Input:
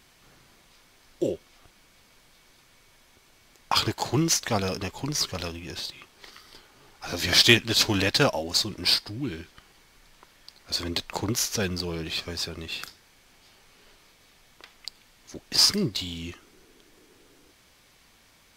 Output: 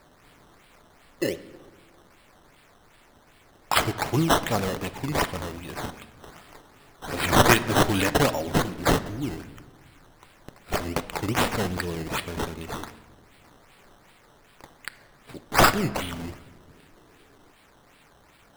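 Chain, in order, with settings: treble shelf 8.2 kHz +9.5 dB; decimation with a swept rate 13×, swing 100% 2.6 Hz; reverberation RT60 1.3 s, pre-delay 7 ms, DRR 12.5 dB

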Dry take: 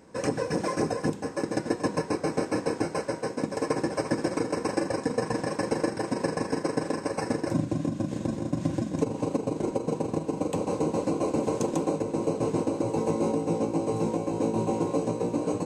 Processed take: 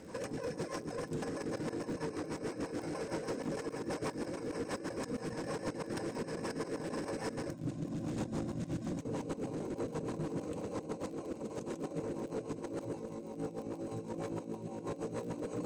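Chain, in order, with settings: hum notches 50/100/150/200/250/300/350/400/450 Hz; compressor with a negative ratio -34 dBFS, ratio -0.5; saturation -32 dBFS, distortion -10 dB; crackle 43 per s -45 dBFS; rotary cabinet horn 6.3 Hz; trim +1 dB

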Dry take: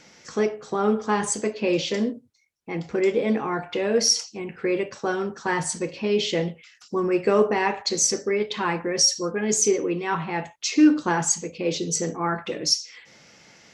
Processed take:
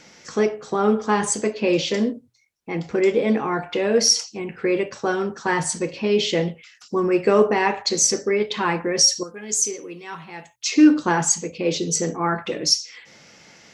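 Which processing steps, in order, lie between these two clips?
9.23–10.66 s: pre-emphasis filter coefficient 0.8; hum notches 60/120 Hz; trim +3 dB

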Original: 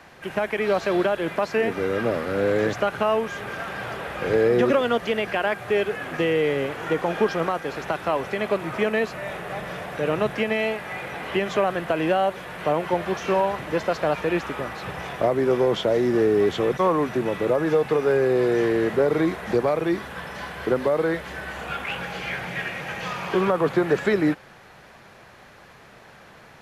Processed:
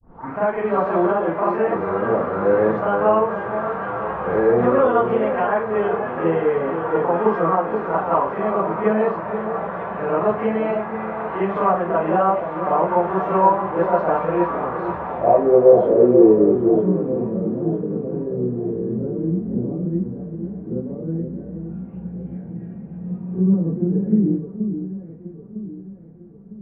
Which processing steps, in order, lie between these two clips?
tape start-up on the opening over 0.35 s; low-pass sweep 1.1 kHz -> 210 Hz, 14.85–16.95 s; on a send: echo whose repeats swap between lows and highs 477 ms, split 850 Hz, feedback 64%, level -7 dB; on the sum: Schroeder reverb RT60 0.31 s, combs from 33 ms, DRR -8 dB; trim -7 dB

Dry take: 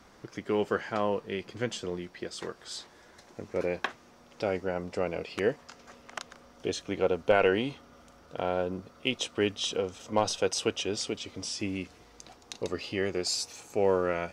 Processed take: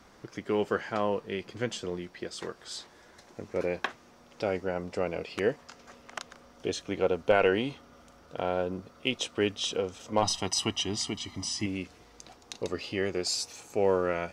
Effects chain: 10.22–11.66 s: comb 1 ms, depth 91%

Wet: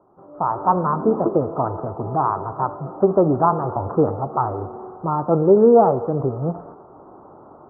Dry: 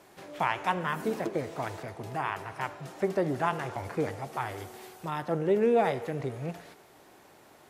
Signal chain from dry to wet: Chebyshev low-pass 1.3 kHz, order 6; level rider gain up to 13.5 dB

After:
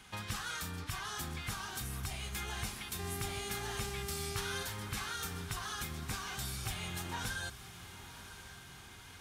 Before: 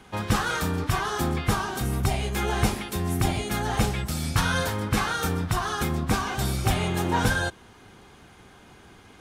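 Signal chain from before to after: amplifier tone stack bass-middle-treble 5-5-5; compression 2.5:1, threshold -48 dBFS, peak gain reduction 12 dB; 2.98–4.62 s: mains buzz 400 Hz, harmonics 33, -52 dBFS -5 dB/octave; echo that smears into a reverb 1024 ms, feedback 60%, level -13 dB; trim +7 dB

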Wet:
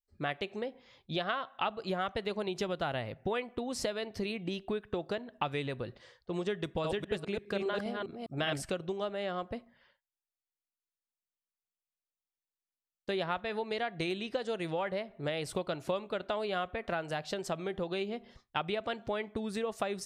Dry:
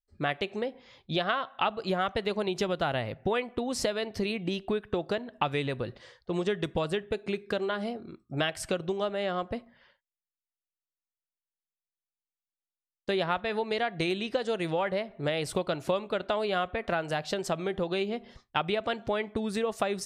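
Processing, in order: 6.64–8.70 s: chunks repeated in reverse 203 ms, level -2 dB; trim -5 dB

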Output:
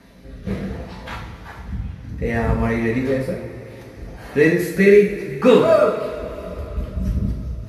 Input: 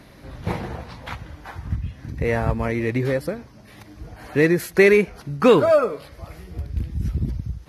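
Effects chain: rotary cabinet horn 0.65 Hz, later 5 Hz, at 6.08 s; two-slope reverb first 0.51 s, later 4.1 s, from -17 dB, DRR -3 dB; trim -1.5 dB

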